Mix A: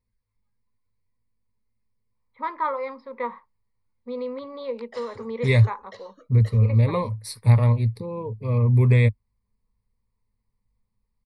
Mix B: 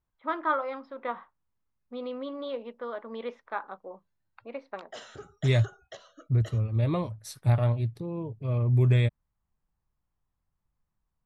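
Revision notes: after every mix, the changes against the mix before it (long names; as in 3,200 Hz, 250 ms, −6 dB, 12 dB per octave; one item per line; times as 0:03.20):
first voice: entry −2.15 s
second voice −3.5 dB
master: remove EQ curve with evenly spaced ripples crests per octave 0.92, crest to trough 14 dB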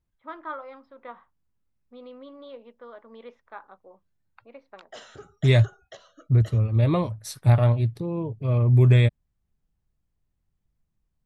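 first voice −8.0 dB
second voice +5.5 dB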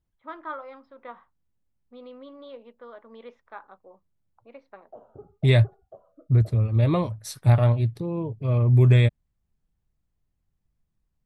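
background: add inverse Chebyshev low-pass filter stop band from 1,800 Hz, stop band 40 dB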